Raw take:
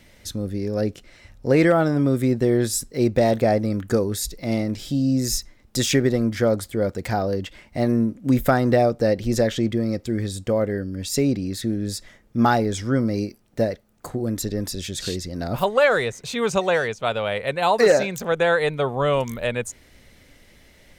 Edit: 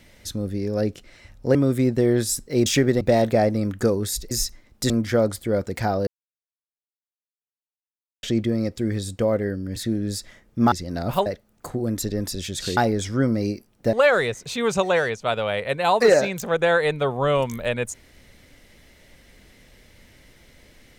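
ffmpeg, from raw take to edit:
-filter_complex "[0:a]asplit=13[a][b][c][d][e][f][g][h][i][j][k][l][m];[a]atrim=end=1.552[n];[b]atrim=start=1.988:end=3.102[o];[c]atrim=start=5.828:end=6.182[p];[d]atrim=start=3.098:end=4.402[q];[e]atrim=start=5.238:end=5.832[r];[f]atrim=start=6.178:end=7.35,asetpts=PTS-STARTPTS,afade=t=out:st=1.168:d=0.004:c=hsin[s];[g]atrim=start=7.35:end=9.51,asetpts=PTS-STARTPTS,volume=0[t];[h]atrim=start=9.51:end=11.042,asetpts=PTS-STARTPTS,afade=t=in:d=0.004:c=hsin[u];[i]atrim=start=11.538:end=12.502[v];[j]atrim=start=15.168:end=15.712[w];[k]atrim=start=13.658:end=15.172[x];[l]atrim=start=12.498:end=13.662[y];[m]atrim=start=15.708[z];[n][o]acrossfade=d=0.004:c1=hsin:c2=hsin[aa];[aa][p]acrossfade=d=0.004:c1=hsin:c2=hsin[ab];[ab][q]acrossfade=d=0.004:c1=hsin:c2=hsin[ac];[ac][r]acrossfade=d=0.004:c1=hsin:c2=hsin[ad];[s][t][u]concat=n=3:v=0:a=1[ae];[ad][ae]acrossfade=d=0.004:c1=hsin:c2=hsin[af];[af][v]acrossfade=d=0.004:c1=hsin:c2=hsin[ag];[ag][w]acrossfade=d=0.004:c1=hsin:c2=hsin[ah];[ah][x]acrossfade=d=0.004:c1=hsin:c2=hsin[ai];[ai][y]acrossfade=d=0.004:c1=hsin:c2=hsin[aj];[aj][z]acrossfade=d=0.004:c1=hsin:c2=hsin"

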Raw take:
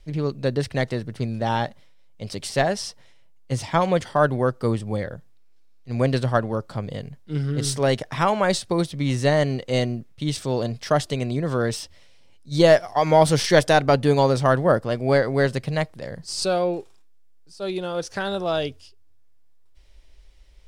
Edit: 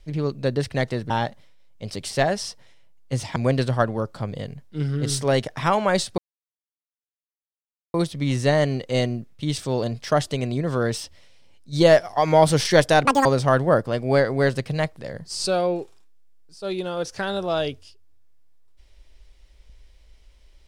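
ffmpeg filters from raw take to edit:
-filter_complex "[0:a]asplit=6[a][b][c][d][e][f];[a]atrim=end=1.102[g];[b]atrim=start=1.488:end=3.752[h];[c]atrim=start=5.908:end=8.73,asetpts=PTS-STARTPTS,afade=t=out:st=2.818:d=0.004:c=hsin,apad=pad_dur=1.76[i];[d]atrim=start=8.73:end=13.844,asetpts=PTS-STARTPTS,afade=t=in:d=0.004:c=hsin[j];[e]atrim=start=13.84:end=14.23,asetpts=PTS-STARTPTS,asetrate=84672,aresample=44100[k];[f]atrim=start=14.226[l];[g][h]acrossfade=d=0.004:c1=hsin:c2=hsin[m];[i][j]concat=n=2:v=0:a=1[n];[m][n]acrossfade=d=0.004:c1=hsin:c2=hsin[o];[o][k]acrossfade=d=0.004:c1=hsin:c2=hsin[p];[p][l]acrossfade=d=0.004:c1=hsin:c2=hsin"

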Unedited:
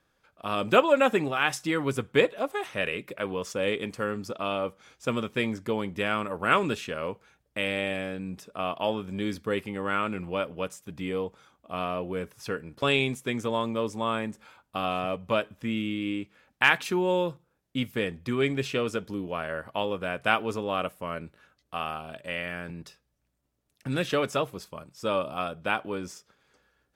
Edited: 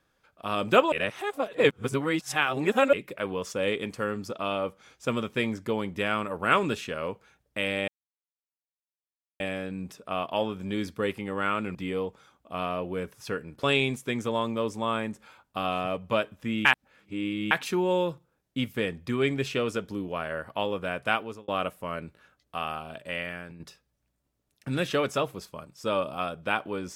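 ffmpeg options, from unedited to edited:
-filter_complex "[0:a]asplit=9[a][b][c][d][e][f][g][h][i];[a]atrim=end=0.922[j];[b]atrim=start=0.918:end=2.932,asetpts=PTS-STARTPTS,areverse[k];[c]atrim=start=2.928:end=7.88,asetpts=PTS-STARTPTS,afade=t=out:st=4.948:d=0.004:c=hsin,apad=pad_dur=1.52[l];[d]atrim=start=7.88:end=10.232,asetpts=PTS-STARTPTS,afade=t=in:d=0.004:c=hsin[m];[e]atrim=start=10.938:end=15.842[n];[f]atrim=start=15.838:end=16.702,asetpts=PTS-STARTPTS,areverse[o];[g]atrim=start=16.698:end=20.67,asetpts=PTS-STARTPTS,afade=t=out:st=3.332:d=0.64:c=qsin[p];[h]atrim=start=20.67:end=22.79,asetpts=PTS-STARTPTS,afade=t=in:d=0.004:c=hsin,afade=t=out:st=1.72:d=0.4:silence=0.354813[q];[i]atrim=start=22.79,asetpts=PTS-STARTPTS,afade=t=in:d=0.004:c=hsin:silence=0.354813[r];[j][k]acrossfade=d=0.004:c1=hsin:c2=hsin[s];[l][m]concat=n=2:v=0:a=1[t];[s][t]acrossfade=d=0.004:c1=hsin:c2=hsin[u];[u][n]acrossfade=d=0.004:c1=hsin:c2=hsin[v];[v][o]acrossfade=d=0.004:c1=hsin:c2=hsin[w];[p][q][r]concat=n=3:v=0:a=1[x];[w][x]acrossfade=d=0.004:c1=hsin:c2=hsin"

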